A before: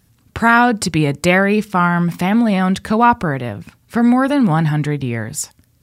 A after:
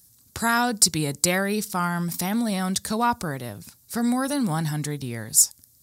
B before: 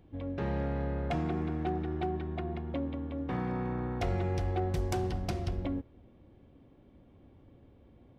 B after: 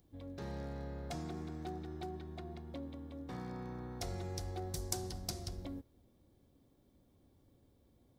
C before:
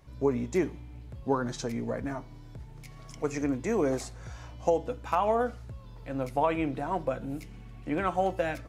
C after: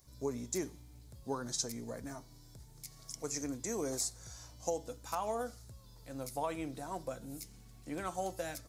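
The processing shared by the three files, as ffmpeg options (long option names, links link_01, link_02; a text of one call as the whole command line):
ffmpeg -i in.wav -af "aexciter=amount=6.7:drive=5.9:freq=4000,volume=-10.5dB" out.wav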